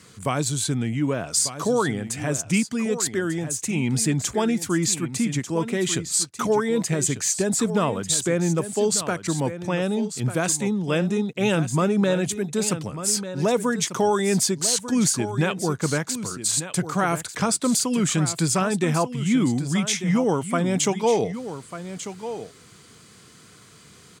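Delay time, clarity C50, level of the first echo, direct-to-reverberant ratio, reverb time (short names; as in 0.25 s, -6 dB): 1.194 s, none, -11.5 dB, none, none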